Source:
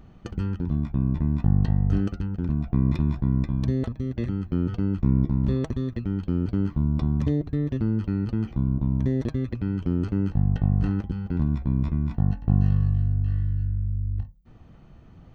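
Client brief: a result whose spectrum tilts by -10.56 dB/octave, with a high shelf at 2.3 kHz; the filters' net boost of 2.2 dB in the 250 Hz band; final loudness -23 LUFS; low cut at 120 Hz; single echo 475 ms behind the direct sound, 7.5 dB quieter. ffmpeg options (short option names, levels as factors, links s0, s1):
-af "highpass=120,equalizer=f=250:t=o:g=3.5,highshelf=f=2300:g=7,aecho=1:1:475:0.422,volume=1.26"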